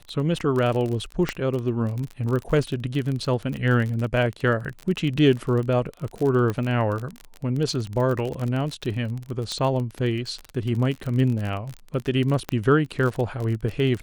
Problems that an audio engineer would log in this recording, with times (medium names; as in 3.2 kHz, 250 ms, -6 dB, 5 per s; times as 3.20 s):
crackle 33 per s -27 dBFS
1.29 s: pop -11 dBFS
3.20 s: dropout 4.6 ms
6.50 s: pop -15 dBFS
9.52 s: pop -16 dBFS
12.49 s: pop -11 dBFS